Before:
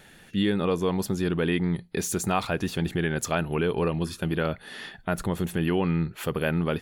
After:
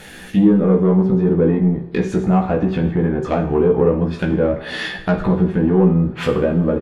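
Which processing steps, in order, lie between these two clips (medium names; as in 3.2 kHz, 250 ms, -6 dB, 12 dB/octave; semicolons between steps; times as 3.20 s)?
low-pass that closes with the level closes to 750 Hz, closed at -22.5 dBFS; in parallel at -2.5 dB: compression, threshold -32 dBFS, peak gain reduction 11 dB; on the sum: saturation -16 dBFS, distortion -19 dB; doubling 16 ms -3 dB; two-slope reverb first 0.55 s, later 3.3 s, from -22 dB, DRR 4.5 dB; trim +6.5 dB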